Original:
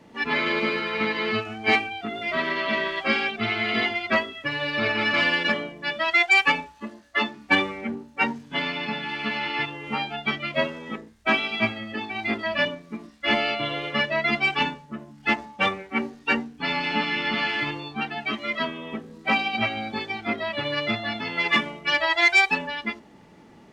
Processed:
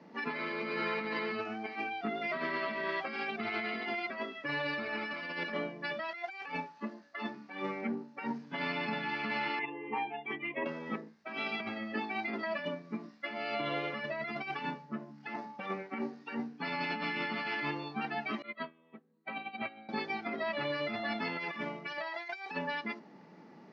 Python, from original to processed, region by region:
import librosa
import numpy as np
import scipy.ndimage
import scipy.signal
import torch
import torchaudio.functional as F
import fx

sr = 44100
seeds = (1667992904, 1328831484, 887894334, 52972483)

y = fx.chain(x, sr, fx.envelope_sharpen(power=1.5),
    fx.highpass(hz=62.0, slope=12),
    fx.fixed_phaser(hz=910.0, stages=8), at=(9.59, 10.66))
y = fx.chain(y, sr, fx.brickwall_lowpass(high_hz=4600.0),
    fx.upward_expand(threshold_db=-36.0, expansion=2.5), at=(18.42, 19.89))
y = scipy.signal.sosfilt(scipy.signal.ellip(3, 1.0, 40, [160.0, 5100.0], 'bandpass', fs=sr, output='sos'), y)
y = fx.over_compress(y, sr, threshold_db=-29.0, ratio=-1.0)
y = fx.peak_eq(y, sr, hz=3300.0, db=-8.0, octaves=0.59)
y = F.gain(torch.from_numpy(y), -6.5).numpy()